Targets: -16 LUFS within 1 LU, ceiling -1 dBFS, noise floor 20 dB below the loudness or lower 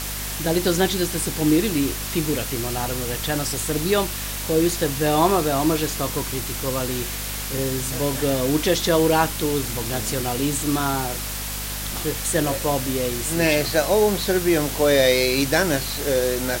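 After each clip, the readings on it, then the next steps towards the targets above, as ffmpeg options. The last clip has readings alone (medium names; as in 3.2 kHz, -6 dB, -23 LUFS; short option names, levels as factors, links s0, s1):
hum 50 Hz; highest harmonic 250 Hz; hum level -31 dBFS; noise floor -29 dBFS; noise floor target -42 dBFS; loudness -21.5 LUFS; peak level -5.5 dBFS; loudness target -16.0 LUFS
-> -af "bandreject=f=50:t=h:w=6,bandreject=f=100:t=h:w=6,bandreject=f=150:t=h:w=6,bandreject=f=200:t=h:w=6,bandreject=f=250:t=h:w=6"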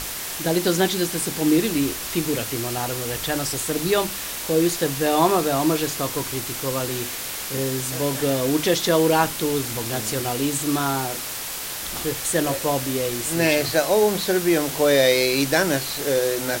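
hum not found; noise floor -31 dBFS; noise floor target -42 dBFS
-> -af "afftdn=nr=11:nf=-31"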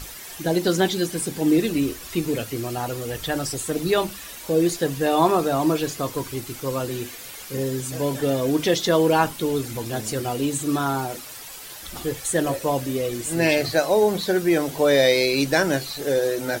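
noise floor -39 dBFS; noise floor target -43 dBFS
-> -af "afftdn=nr=6:nf=-39"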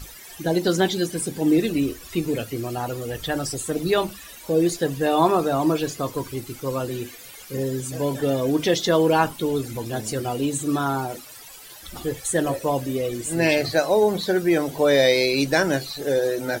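noise floor -43 dBFS; loudness -23.0 LUFS; peak level -6.0 dBFS; loudness target -16.0 LUFS
-> -af "volume=2.24,alimiter=limit=0.891:level=0:latency=1"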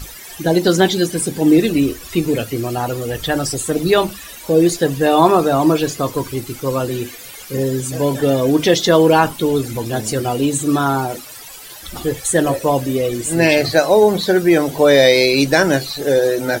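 loudness -16.0 LUFS; peak level -1.0 dBFS; noise floor -36 dBFS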